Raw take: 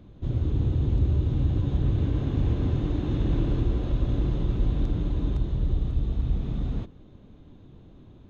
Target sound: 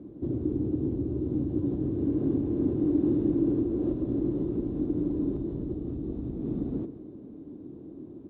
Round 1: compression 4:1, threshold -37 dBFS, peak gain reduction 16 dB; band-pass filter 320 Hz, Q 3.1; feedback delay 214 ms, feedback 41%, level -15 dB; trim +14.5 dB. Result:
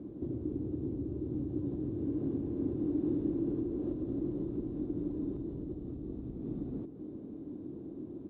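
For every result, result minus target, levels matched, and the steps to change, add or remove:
echo 75 ms late; compression: peak gain reduction +7 dB
change: feedback delay 139 ms, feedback 41%, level -15 dB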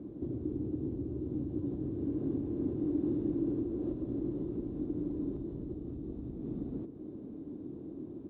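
compression: peak gain reduction +7 dB
change: compression 4:1, threshold -27.5 dBFS, peak gain reduction 9 dB

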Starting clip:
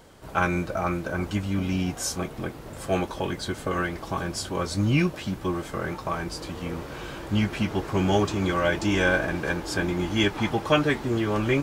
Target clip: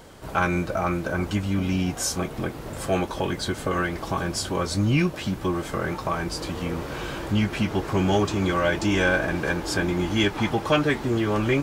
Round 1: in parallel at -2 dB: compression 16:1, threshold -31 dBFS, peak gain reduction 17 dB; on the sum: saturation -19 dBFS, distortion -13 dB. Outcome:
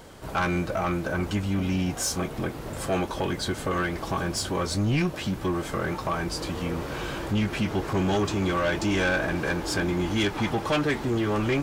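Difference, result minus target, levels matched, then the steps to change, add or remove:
saturation: distortion +13 dB
change: saturation -9 dBFS, distortion -26 dB

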